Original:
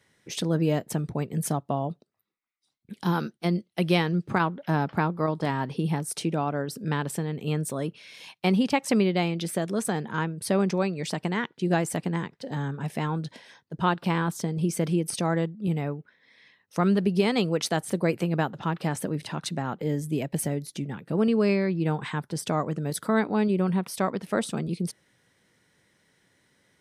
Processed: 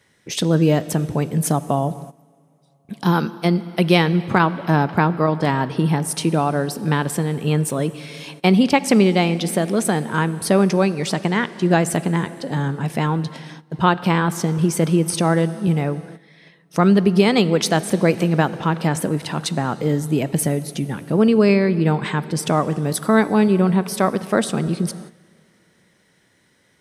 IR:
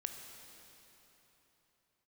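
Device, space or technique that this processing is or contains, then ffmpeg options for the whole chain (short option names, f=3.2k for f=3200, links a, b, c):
keyed gated reverb: -filter_complex "[0:a]asplit=3[a][b][c];[1:a]atrim=start_sample=2205[d];[b][d]afir=irnorm=-1:irlink=0[e];[c]apad=whole_len=1182197[f];[e][f]sidechaingate=range=-14dB:threshold=-54dB:ratio=16:detection=peak,volume=-5dB[g];[a][g]amix=inputs=2:normalize=0,volume=5dB"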